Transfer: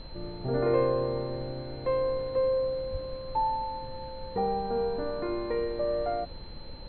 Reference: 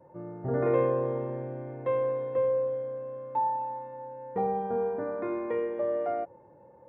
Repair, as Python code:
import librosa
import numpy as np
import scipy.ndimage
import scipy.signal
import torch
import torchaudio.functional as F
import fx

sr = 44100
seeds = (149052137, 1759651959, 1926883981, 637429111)

y = fx.notch(x, sr, hz=4100.0, q=30.0)
y = fx.fix_deplosive(y, sr, at_s=(2.91,))
y = fx.noise_reduce(y, sr, print_start_s=6.35, print_end_s=6.85, reduce_db=13.0)